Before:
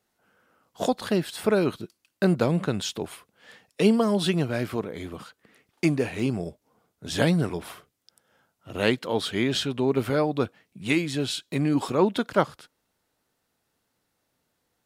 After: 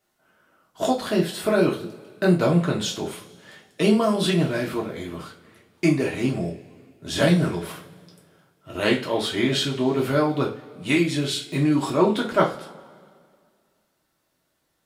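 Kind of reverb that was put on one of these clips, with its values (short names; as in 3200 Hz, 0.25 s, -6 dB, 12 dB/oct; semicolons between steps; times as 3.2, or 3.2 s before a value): two-slope reverb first 0.3 s, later 2.1 s, from -22 dB, DRR -2.5 dB; gain -1 dB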